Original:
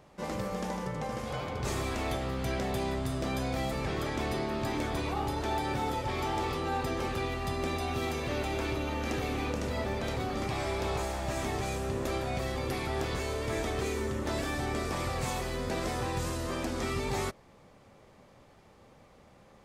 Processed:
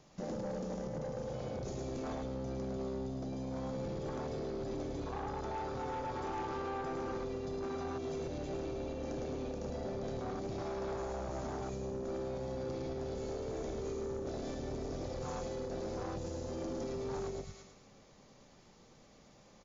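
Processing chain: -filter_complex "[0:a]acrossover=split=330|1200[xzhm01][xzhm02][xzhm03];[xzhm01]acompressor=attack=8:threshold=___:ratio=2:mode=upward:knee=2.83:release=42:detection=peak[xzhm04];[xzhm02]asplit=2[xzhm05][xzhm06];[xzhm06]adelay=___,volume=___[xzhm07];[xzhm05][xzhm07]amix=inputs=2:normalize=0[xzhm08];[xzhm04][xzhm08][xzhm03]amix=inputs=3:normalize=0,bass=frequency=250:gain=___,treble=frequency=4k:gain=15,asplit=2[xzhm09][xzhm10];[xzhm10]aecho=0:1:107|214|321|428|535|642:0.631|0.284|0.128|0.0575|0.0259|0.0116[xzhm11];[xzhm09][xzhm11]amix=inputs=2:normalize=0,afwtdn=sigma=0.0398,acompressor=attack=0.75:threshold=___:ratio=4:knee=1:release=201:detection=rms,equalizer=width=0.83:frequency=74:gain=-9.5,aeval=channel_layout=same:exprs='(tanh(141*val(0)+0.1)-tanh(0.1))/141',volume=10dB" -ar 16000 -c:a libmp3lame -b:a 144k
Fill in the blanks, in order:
-51dB, 40, -11dB, 3, -41dB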